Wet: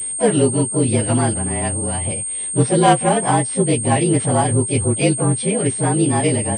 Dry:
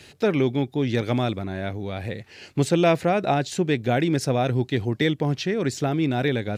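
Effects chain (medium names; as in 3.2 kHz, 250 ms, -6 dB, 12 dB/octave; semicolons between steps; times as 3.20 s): frequency axis rescaled in octaves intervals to 111%; harmony voices +5 st -10 dB; class-D stage that switches slowly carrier 8.6 kHz; trim +7 dB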